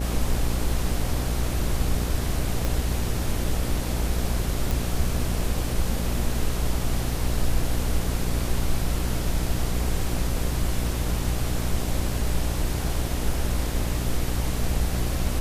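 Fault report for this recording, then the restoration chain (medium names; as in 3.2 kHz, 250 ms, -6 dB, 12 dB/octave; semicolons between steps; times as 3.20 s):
buzz 60 Hz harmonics 13 -28 dBFS
2.65 s: pop -11 dBFS
4.71 s: pop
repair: de-click; de-hum 60 Hz, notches 13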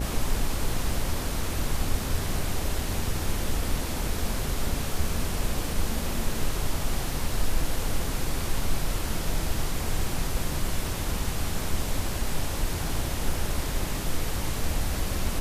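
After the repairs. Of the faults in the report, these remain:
2.65 s: pop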